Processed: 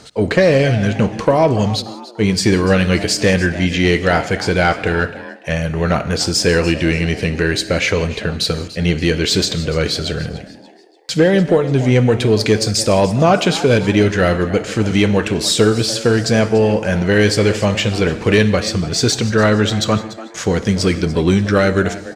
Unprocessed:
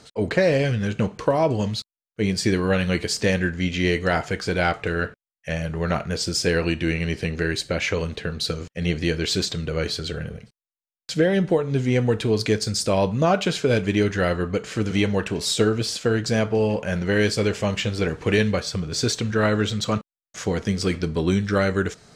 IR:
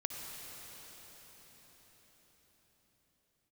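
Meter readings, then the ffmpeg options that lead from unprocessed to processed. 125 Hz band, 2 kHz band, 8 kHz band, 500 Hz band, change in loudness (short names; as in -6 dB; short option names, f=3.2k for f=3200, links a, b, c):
+7.5 dB, +7.0 dB, +8.0 dB, +7.5 dB, +7.5 dB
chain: -filter_complex "[0:a]asplit=4[a][b][c][d];[b]adelay=291,afreqshift=120,volume=-17dB[e];[c]adelay=582,afreqshift=240,volume=-25.6dB[f];[d]adelay=873,afreqshift=360,volume=-34.3dB[g];[a][e][f][g]amix=inputs=4:normalize=0,acontrast=88,asplit=2[h][i];[1:a]atrim=start_sample=2205,afade=t=out:st=0.24:d=0.01,atrim=end_sample=11025[j];[i][j]afir=irnorm=-1:irlink=0,volume=-5.5dB[k];[h][k]amix=inputs=2:normalize=0,volume=-2.5dB"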